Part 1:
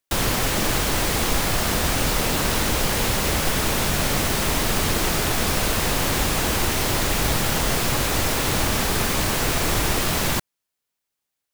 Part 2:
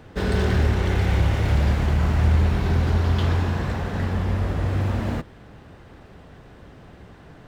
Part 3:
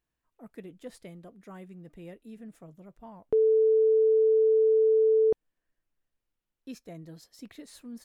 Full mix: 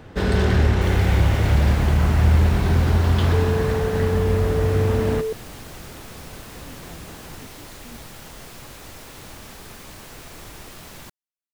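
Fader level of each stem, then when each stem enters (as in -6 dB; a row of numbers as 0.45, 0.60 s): -18.5, +2.5, -3.5 dB; 0.70, 0.00, 0.00 s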